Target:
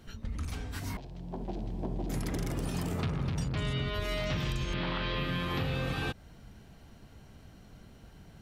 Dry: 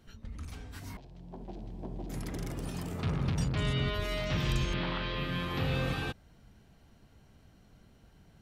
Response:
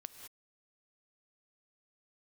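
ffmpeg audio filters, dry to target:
-af "acompressor=threshold=-35dB:ratio=10,volume=6.5dB"

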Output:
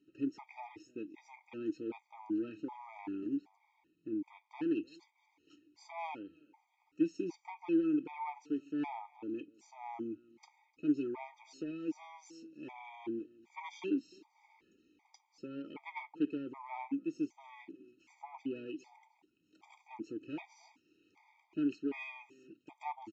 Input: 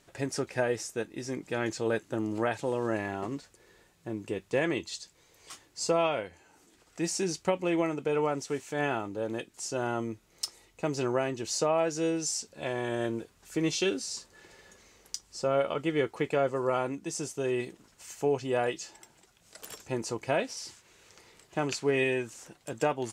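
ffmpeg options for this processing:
-filter_complex "[0:a]aresample=16000,asoftclip=type=tanh:threshold=-25dB,aresample=44100,asplit=3[a][b][c];[a]bandpass=f=300:t=q:w=8,volume=0dB[d];[b]bandpass=f=870:t=q:w=8,volume=-6dB[e];[c]bandpass=f=2.24k:t=q:w=8,volume=-9dB[f];[d][e][f]amix=inputs=3:normalize=0,aeval=exprs='0.0376*(cos(1*acos(clip(val(0)/0.0376,-1,1)))-cos(1*PI/2))+0.00473*(cos(3*acos(clip(val(0)/0.0376,-1,1)))-cos(3*PI/2))+0.000211*(cos(7*acos(clip(val(0)/0.0376,-1,1)))-cos(7*PI/2))':c=same,aecho=1:1:302:0.0668,afftfilt=real='re*gt(sin(2*PI*1.3*pts/sr)*(1-2*mod(floor(b*sr/1024/630),2)),0)':imag='im*gt(sin(2*PI*1.3*pts/sr)*(1-2*mod(floor(b*sr/1024/630),2)),0)':win_size=1024:overlap=0.75,volume=11dB"

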